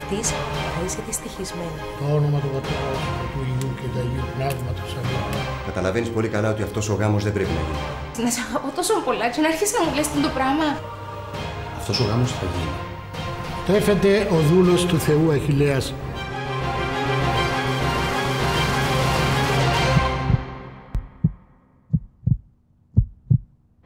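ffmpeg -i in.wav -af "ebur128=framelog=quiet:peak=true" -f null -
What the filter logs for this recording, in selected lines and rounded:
Integrated loudness:
  I:         -22.5 LUFS
  Threshold: -32.7 LUFS
Loudness range:
  LRA:         6.1 LU
  Threshold: -42.5 LUFS
  LRA low:   -25.6 LUFS
  LRA high:  -19.5 LUFS
True peak:
  Peak:       -3.4 dBFS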